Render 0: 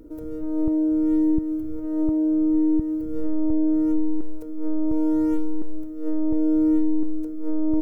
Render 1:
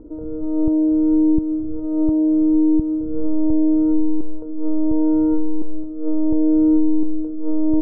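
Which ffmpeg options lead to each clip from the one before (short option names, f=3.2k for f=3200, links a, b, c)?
-af "lowpass=f=1.1k:w=0.5412,lowpass=f=1.1k:w=1.3066,volume=4.5dB"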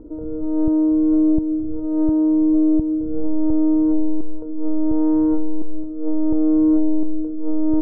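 -af "acontrast=56,volume=-5.5dB"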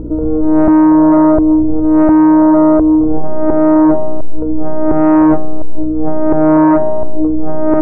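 -af "aeval=exprs='val(0)+0.0112*(sin(2*PI*60*n/s)+sin(2*PI*2*60*n/s)/2+sin(2*PI*3*60*n/s)/3+sin(2*PI*4*60*n/s)/4+sin(2*PI*5*60*n/s)/5)':c=same,aeval=exprs='0.355*sin(PI/2*2*val(0)/0.355)':c=same,volume=4dB"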